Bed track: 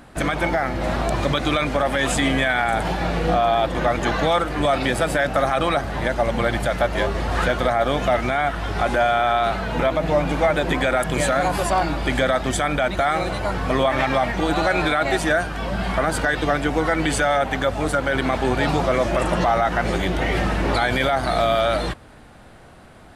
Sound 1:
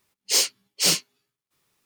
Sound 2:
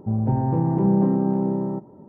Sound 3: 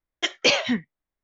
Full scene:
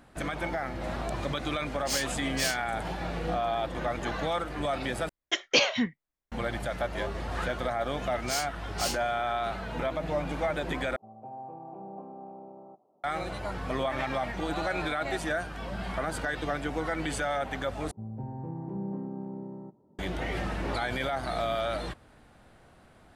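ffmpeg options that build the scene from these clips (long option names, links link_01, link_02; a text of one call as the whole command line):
ffmpeg -i bed.wav -i cue0.wav -i cue1.wav -i cue2.wav -filter_complex "[1:a]asplit=2[link_01][link_02];[2:a]asplit=2[link_03][link_04];[0:a]volume=-11dB[link_05];[link_03]asplit=3[link_06][link_07][link_08];[link_06]bandpass=frequency=730:width_type=q:width=8,volume=0dB[link_09];[link_07]bandpass=frequency=1090:width_type=q:width=8,volume=-6dB[link_10];[link_08]bandpass=frequency=2440:width_type=q:width=8,volume=-9dB[link_11];[link_09][link_10][link_11]amix=inputs=3:normalize=0[link_12];[link_05]asplit=4[link_13][link_14][link_15][link_16];[link_13]atrim=end=5.094[link_17];[3:a]atrim=end=1.23,asetpts=PTS-STARTPTS,volume=-3.5dB[link_18];[link_14]atrim=start=6.316:end=10.964[link_19];[link_12]atrim=end=2.08,asetpts=PTS-STARTPTS,volume=-4.5dB[link_20];[link_15]atrim=start=13.036:end=17.914[link_21];[link_04]atrim=end=2.08,asetpts=PTS-STARTPTS,volume=-16.5dB[link_22];[link_16]atrim=start=19.986[link_23];[link_01]atrim=end=1.85,asetpts=PTS-STARTPTS,volume=-11.5dB,afade=type=in:duration=0.004:curve=hsin,afade=type=out:start_time=1.846:duration=0.004:curve=hsin,adelay=1570[link_24];[link_02]atrim=end=1.85,asetpts=PTS-STARTPTS,volume=-13dB,afade=type=in:duration=0.004:curve=hsin,afade=type=out:start_time=1.846:duration=0.004:curve=hsin,adelay=7980[link_25];[link_17][link_18]acrossfade=duration=0.004:curve1=hsin:curve2=hsin[link_26];[link_26][link_19]acrossfade=duration=0.004:curve1=hsin:curve2=hsin[link_27];[link_27][link_20]acrossfade=duration=0.004:curve1=hsin:curve2=hsin[link_28];[link_28][link_21]acrossfade=duration=0.004:curve1=hsin:curve2=hsin[link_29];[link_29][link_22]acrossfade=duration=0.004:curve1=hsin:curve2=hsin[link_30];[link_30][link_23]acrossfade=duration=0.004:curve1=hsin:curve2=hsin[link_31];[link_31][link_24][link_25]amix=inputs=3:normalize=0" out.wav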